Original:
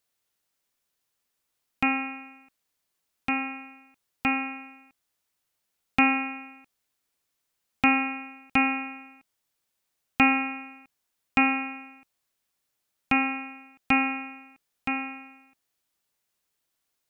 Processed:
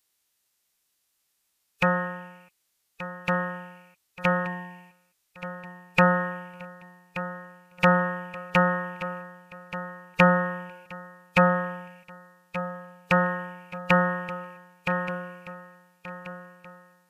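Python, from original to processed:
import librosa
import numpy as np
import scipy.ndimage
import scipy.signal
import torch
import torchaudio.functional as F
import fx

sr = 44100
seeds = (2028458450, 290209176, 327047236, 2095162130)

y = fx.high_shelf(x, sr, hz=2200.0, db=7.0)
y = fx.pitch_keep_formants(y, sr, semitones=-7.0)
y = fx.echo_feedback(y, sr, ms=1178, feedback_pct=49, wet_db=-13.5)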